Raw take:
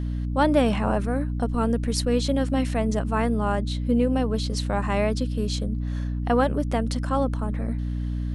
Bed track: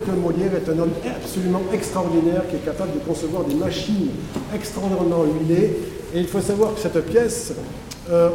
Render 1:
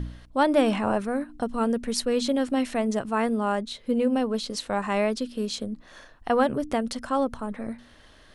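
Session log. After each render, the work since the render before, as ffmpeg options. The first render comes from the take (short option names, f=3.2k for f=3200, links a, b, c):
-af "bandreject=f=60:t=h:w=4,bandreject=f=120:t=h:w=4,bandreject=f=180:t=h:w=4,bandreject=f=240:t=h:w=4,bandreject=f=300:t=h:w=4"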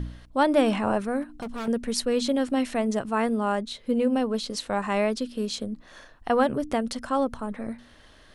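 -filter_complex "[0:a]asettb=1/sr,asplit=3[a][b][c];[a]atrim=end=1.224[d];[b]atrim=start=1.22:end=1.68,asetpts=PTS-STARTPTS,afade=t=in:d=0.004:c=qsin,afade=t=out:st=0.456:d=0.004:c=qsin,volume=30.5dB,asoftclip=hard,volume=-30.5dB[e];[c]atrim=start=1.676[f];[d][e]acrossfade=d=0.004:c1=hsin:c2=qsin[g];[g][f]acrossfade=d=0.004:c1=qsin:c2=hsin"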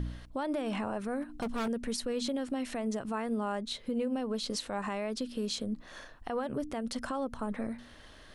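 -af "acompressor=threshold=-29dB:ratio=3,alimiter=level_in=1dB:limit=-24dB:level=0:latency=1:release=69,volume=-1dB"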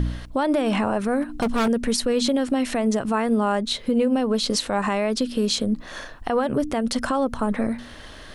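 -af "volume=12dB"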